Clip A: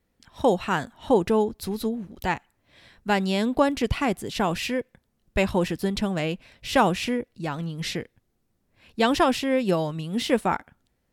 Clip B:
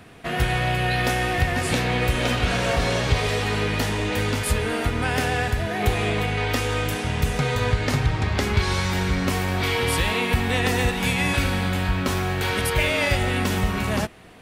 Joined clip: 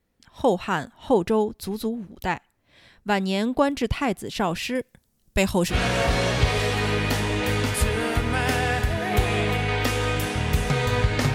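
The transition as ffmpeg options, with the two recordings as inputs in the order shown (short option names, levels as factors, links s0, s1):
-filter_complex "[0:a]asettb=1/sr,asplit=3[s0][s1][s2];[s0]atrim=end=4.754[s3];[s1]atrim=start=4.75:end=5.76,asetpts=PTS-STARTPTS,afade=t=in:d=0.004:c=qsin,afade=t=out:st=1.006:d=0.004:c=qsin,bass=f=250:g=3,treble=f=4000:g=12[s4];[s2]atrim=start=5.756[s5];[s3][s4]acrossfade=d=0.004:c1=hsin:c2=qsin[s6];[s6][s5]acrossfade=d=0.004:c1=qsin:c2=hsin,apad=whole_dur=11.34,atrim=end=11.34,atrim=end=5.76,asetpts=PTS-STARTPTS[s7];[1:a]atrim=start=2.37:end=8.03,asetpts=PTS-STARTPTS[s8];[s7][s8]acrossfade=d=0.08:c1=tri:c2=tri"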